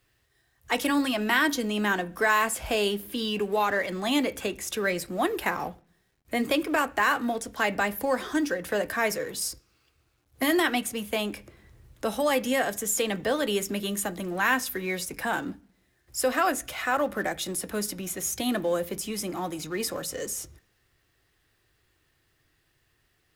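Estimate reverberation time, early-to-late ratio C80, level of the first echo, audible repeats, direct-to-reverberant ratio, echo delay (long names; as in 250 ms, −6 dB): 0.45 s, 26.0 dB, no echo audible, no echo audible, 11.0 dB, no echo audible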